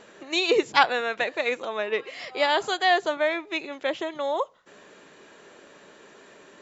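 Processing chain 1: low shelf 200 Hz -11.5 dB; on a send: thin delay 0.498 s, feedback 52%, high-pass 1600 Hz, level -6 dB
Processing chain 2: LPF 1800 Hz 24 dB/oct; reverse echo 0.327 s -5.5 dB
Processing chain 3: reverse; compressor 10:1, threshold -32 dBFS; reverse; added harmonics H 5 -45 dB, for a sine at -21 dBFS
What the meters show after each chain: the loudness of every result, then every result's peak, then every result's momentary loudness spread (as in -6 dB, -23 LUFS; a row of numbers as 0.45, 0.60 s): -25.5, -26.0, -36.5 LUFS; -3.0, -7.0, -21.5 dBFS; 18, 8, 15 LU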